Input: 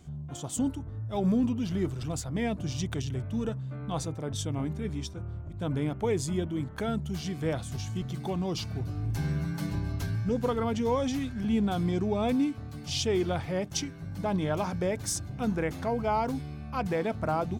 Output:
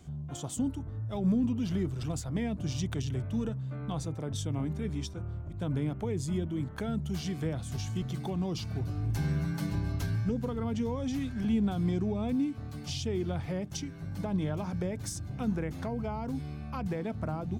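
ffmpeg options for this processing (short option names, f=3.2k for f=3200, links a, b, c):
-filter_complex "[0:a]acrossover=split=280[a][b];[b]acompressor=threshold=-37dB:ratio=6[c];[a][c]amix=inputs=2:normalize=0"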